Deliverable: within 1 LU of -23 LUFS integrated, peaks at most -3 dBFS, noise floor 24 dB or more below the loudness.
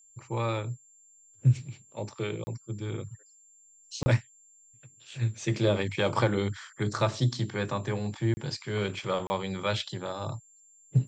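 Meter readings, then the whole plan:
dropouts 4; longest dropout 30 ms; steady tone 7.3 kHz; tone level -56 dBFS; loudness -30.5 LUFS; peak level -12.5 dBFS; loudness target -23.0 LUFS
-> interpolate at 2.44/4.03/8.34/9.27 s, 30 ms; band-stop 7.3 kHz, Q 30; trim +7.5 dB

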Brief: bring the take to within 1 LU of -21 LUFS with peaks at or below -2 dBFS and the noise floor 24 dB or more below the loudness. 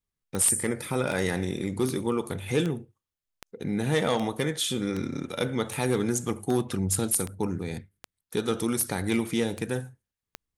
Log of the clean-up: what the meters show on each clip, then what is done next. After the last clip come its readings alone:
clicks found 14; loudness -28.0 LUFS; peak level -11.0 dBFS; loudness target -21.0 LUFS
-> de-click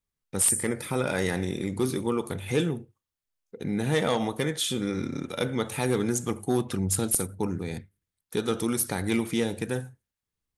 clicks found 0; loudness -28.0 LUFS; peak level -7.0 dBFS; loudness target -21.0 LUFS
-> trim +7 dB; peak limiter -2 dBFS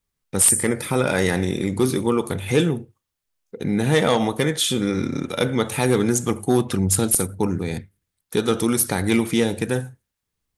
loudness -21.0 LUFS; peak level -2.0 dBFS; noise floor -81 dBFS

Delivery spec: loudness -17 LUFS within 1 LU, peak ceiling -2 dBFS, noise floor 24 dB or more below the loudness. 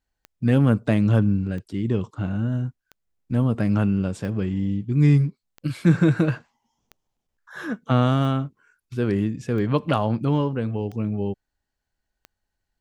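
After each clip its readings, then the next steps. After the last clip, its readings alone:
clicks found 10; loudness -23.0 LUFS; peak level -5.5 dBFS; loudness target -17.0 LUFS
-> de-click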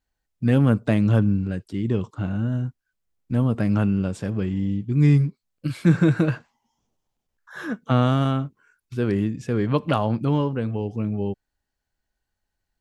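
clicks found 0; loudness -23.0 LUFS; peak level -5.5 dBFS; loudness target -17.0 LUFS
-> trim +6 dB; peak limiter -2 dBFS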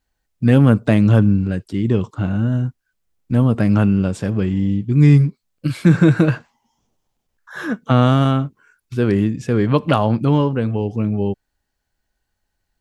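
loudness -17.0 LUFS; peak level -2.0 dBFS; noise floor -76 dBFS

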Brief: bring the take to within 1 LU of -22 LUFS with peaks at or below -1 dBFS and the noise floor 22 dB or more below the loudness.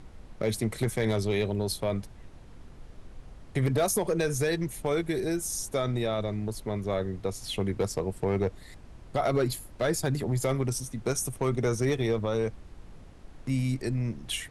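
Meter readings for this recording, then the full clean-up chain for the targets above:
clipped samples 0.3%; clipping level -18.5 dBFS; noise floor -49 dBFS; noise floor target -52 dBFS; loudness -29.5 LUFS; peak level -18.5 dBFS; loudness target -22.0 LUFS
-> clip repair -18.5 dBFS; noise print and reduce 6 dB; trim +7.5 dB

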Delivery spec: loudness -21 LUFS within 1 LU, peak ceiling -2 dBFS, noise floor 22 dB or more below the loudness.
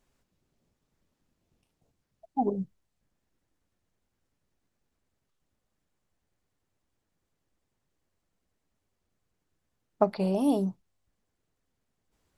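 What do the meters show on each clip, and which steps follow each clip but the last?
loudness -29.0 LUFS; peak level -8.5 dBFS; loudness target -21.0 LUFS
-> trim +8 dB; peak limiter -2 dBFS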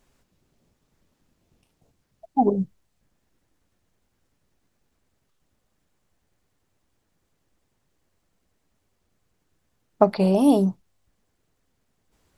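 loudness -21.5 LUFS; peak level -2.0 dBFS; noise floor -73 dBFS

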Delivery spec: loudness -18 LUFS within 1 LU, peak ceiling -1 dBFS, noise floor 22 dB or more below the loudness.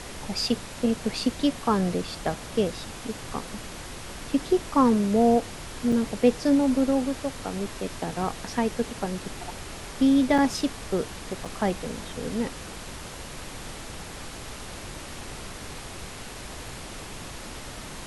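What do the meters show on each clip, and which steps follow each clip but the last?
dropouts 3; longest dropout 4.5 ms; noise floor -40 dBFS; noise floor target -49 dBFS; loudness -26.5 LUFS; peak level -8.0 dBFS; loudness target -18.0 LUFS
-> interpolate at 5.92/10.38/11.45 s, 4.5 ms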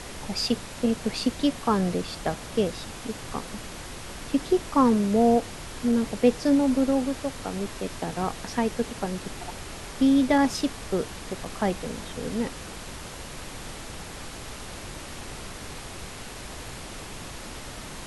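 dropouts 0; noise floor -40 dBFS; noise floor target -49 dBFS
-> noise print and reduce 9 dB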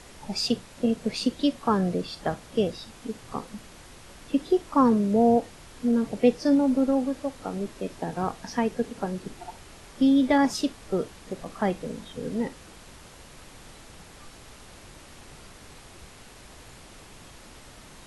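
noise floor -48 dBFS; loudness -26.0 LUFS; peak level -8.0 dBFS; loudness target -18.0 LUFS
-> trim +8 dB; peak limiter -1 dBFS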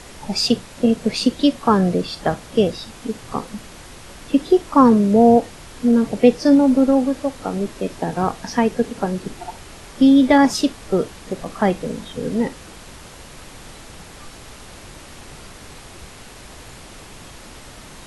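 loudness -18.0 LUFS; peak level -1.0 dBFS; noise floor -40 dBFS

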